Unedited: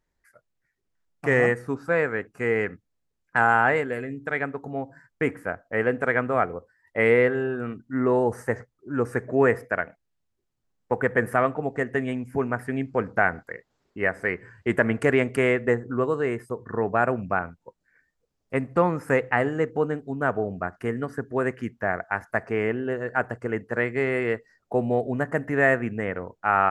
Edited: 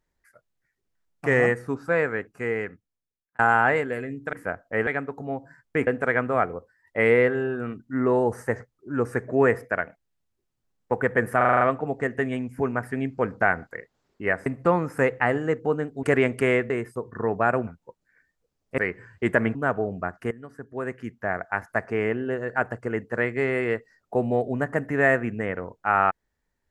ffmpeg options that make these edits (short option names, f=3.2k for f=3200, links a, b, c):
-filter_complex "[0:a]asplit=18[a][b][c][d][e][f][g][h][i][j][k][l][m][n][o][p][q][r];[a]atrim=end=3.39,asetpts=PTS-STARTPTS,afade=t=out:st=2.1:d=1.29[s];[b]atrim=start=3.39:end=4.332,asetpts=PTS-STARTPTS,afade=t=in:d=0.004:c=hsin[t];[c]atrim=start=5.328:end=5.872[u];[d]atrim=start=4.328:end=5.332[v];[e]atrim=start=5.868:end=11.412[w];[f]atrim=start=11.368:end=11.412[x];[g]atrim=start=11.368:end=11.412[y];[h]atrim=start=11.368:end=11.412[z];[i]atrim=start=11.368:end=11.412[aa];[j]atrim=start=11.368:end=11.412[ab];[k]atrim=start=11.368:end=14.222[ac];[l]atrim=start=18.568:end=20.142[ad];[m]atrim=start=14.988:end=15.662[ae];[n]atrim=start=16.238:end=17.212[af];[o]atrim=start=17.458:end=18.572[ag];[p]atrim=start=14.218:end=14.992[ah];[q]atrim=start=20.138:end=20.9,asetpts=PTS-STARTPTS,afade=t=out:st=0.758:d=0.004:c=hsin:silence=0.149624[ai];[r]atrim=start=20.9,asetpts=PTS-STARTPTS,afade=t=in:d=1.23:silence=0.149624[aj];[s][t]concat=n=2:v=0:a=1[ak];[ak][u]acrossfade=d=0.004:c1=hsin:c2=hsin[al];[al][v]acrossfade=d=0.004:c1=hsin:c2=hsin[am];[am][w]acrossfade=d=0.004:c1=hsin:c2=hsin[an];[an][x]acrossfade=d=0.004:c1=hsin:c2=hsin[ao];[ao][y]acrossfade=d=0.004:c1=hsin:c2=hsin[ap];[ap][z]acrossfade=d=0.004:c1=hsin:c2=hsin[aq];[aq][aa]acrossfade=d=0.004:c1=hsin:c2=hsin[ar];[ar][ab]acrossfade=d=0.004:c1=hsin:c2=hsin[as];[as][ac]acrossfade=d=0.004:c1=hsin:c2=hsin[at];[at][ad]acrossfade=d=0.004:c1=hsin:c2=hsin[au];[au][ae]acrossfade=d=0.004:c1=hsin:c2=hsin[av];[av][af]acrossfade=d=0.004:c1=hsin:c2=hsin[aw];[aw][ag]acrossfade=d=0.004:c1=hsin:c2=hsin[ax];[ax][ah]acrossfade=d=0.004:c1=hsin:c2=hsin[ay];[ai][aj]concat=n=2:v=0:a=1[az];[ay][az]acrossfade=d=0.004:c1=hsin:c2=hsin"